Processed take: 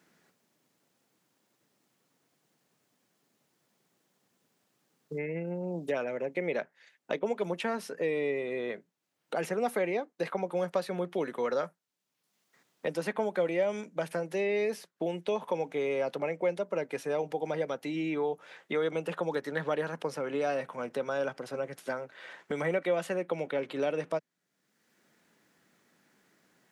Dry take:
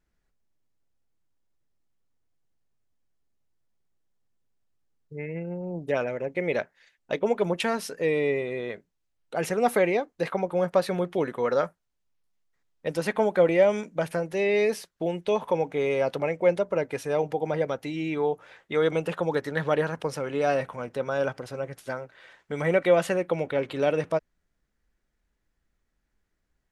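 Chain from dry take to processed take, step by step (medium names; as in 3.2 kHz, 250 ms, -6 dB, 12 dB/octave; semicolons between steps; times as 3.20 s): high-pass 160 Hz 24 dB/octave; three bands compressed up and down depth 70%; trim -6 dB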